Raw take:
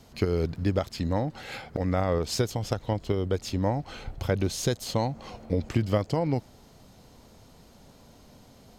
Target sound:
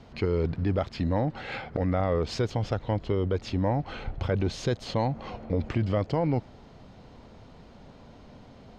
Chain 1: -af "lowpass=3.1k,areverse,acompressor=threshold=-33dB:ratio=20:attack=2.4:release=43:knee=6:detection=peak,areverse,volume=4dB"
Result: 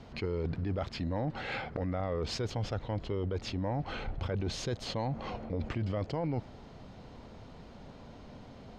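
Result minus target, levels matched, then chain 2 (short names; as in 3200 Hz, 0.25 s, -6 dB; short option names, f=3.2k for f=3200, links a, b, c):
compressor: peak gain reduction +8.5 dB
-af "lowpass=3.1k,areverse,acompressor=threshold=-24dB:ratio=20:attack=2.4:release=43:knee=6:detection=peak,areverse,volume=4dB"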